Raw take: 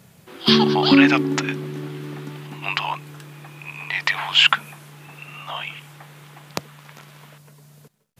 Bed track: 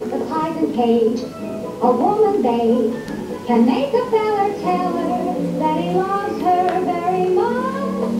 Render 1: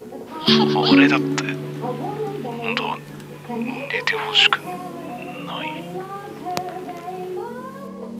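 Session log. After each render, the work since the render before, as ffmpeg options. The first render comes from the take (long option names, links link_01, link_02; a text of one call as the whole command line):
ffmpeg -i in.wav -i bed.wav -filter_complex "[1:a]volume=-12.5dB[link_01];[0:a][link_01]amix=inputs=2:normalize=0" out.wav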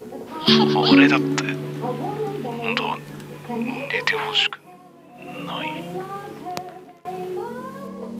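ffmpeg -i in.wav -filter_complex "[0:a]asplit=4[link_01][link_02][link_03][link_04];[link_01]atrim=end=4.53,asetpts=PTS-STARTPTS,afade=type=out:start_time=4.27:duration=0.26:silence=0.177828[link_05];[link_02]atrim=start=4.53:end=5.13,asetpts=PTS-STARTPTS,volume=-15dB[link_06];[link_03]atrim=start=5.13:end=7.05,asetpts=PTS-STARTPTS,afade=type=in:duration=0.26:silence=0.177828,afade=type=out:start_time=1.05:duration=0.87:silence=0.0668344[link_07];[link_04]atrim=start=7.05,asetpts=PTS-STARTPTS,afade=type=in:duration=0.004:curve=hsin:silence=0.0668344[link_08];[link_05][link_06][link_07][link_08]concat=n=4:v=0:a=1" out.wav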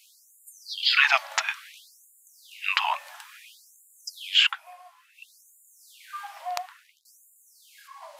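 ffmpeg -i in.wav -af "afftfilt=real='re*gte(b*sr/1024,540*pow(6900/540,0.5+0.5*sin(2*PI*0.58*pts/sr)))':imag='im*gte(b*sr/1024,540*pow(6900/540,0.5+0.5*sin(2*PI*0.58*pts/sr)))':win_size=1024:overlap=0.75" out.wav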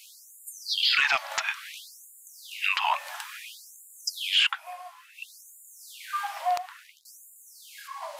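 ffmpeg -i in.wav -af "acontrast=77,alimiter=limit=-13.5dB:level=0:latency=1:release=250" out.wav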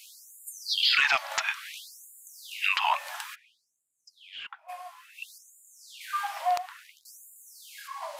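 ffmpeg -i in.wav -filter_complex "[0:a]asplit=3[link_01][link_02][link_03];[link_01]afade=type=out:start_time=3.34:duration=0.02[link_04];[link_02]bandpass=frequency=160:width_type=q:width=0.51,afade=type=in:start_time=3.34:duration=0.02,afade=type=out:start_time=4.68:duration=0.02[link_05];[link_03]afade=type=in:start_time=4.68:duration=0.02[link_06];[link_04][link_05][link_06]amix=inputs=3:normalize=0,asettb=1/sr,asplit=3[link_07][link_08][link_09];[link_07]atrim=end=5.384[link_10];[link_08]atrim=start=5.38:end=6.01,asetpts=PTS-STARTPTS,afade=type=in:duration=0.004:curve=qsin,afade=type=out:start_time=0.626:duration=0.004:curve=qsin,acrossover=split=7600[link_11][link_12];[link_12]acompressor=threshold=-60dB:ratio=4:attack=1:release=60[link_13];[link_11][link_13]amix=inputs=2:normalize=0[link_14];[link_09]atrim=start=6.006[link_15];[link_10][link_14]acrossfade=duration=0.004:curve1=hsin:curve2=qsin[link_16];[link_16][link_15]acrossfade=duration=0.004:curve1=qsin:curve2=hsin" out.wav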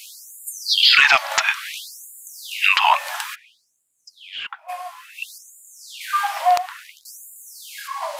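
ffmpeg -i in.wav -af "volume=10dB" out.wav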